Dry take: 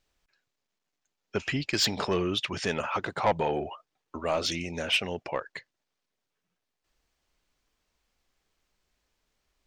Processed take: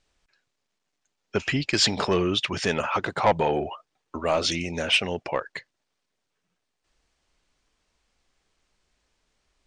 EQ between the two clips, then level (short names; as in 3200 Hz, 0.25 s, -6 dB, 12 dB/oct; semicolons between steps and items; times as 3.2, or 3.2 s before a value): brick-wall FIR low-pass 10000 Hz; +4.5 dB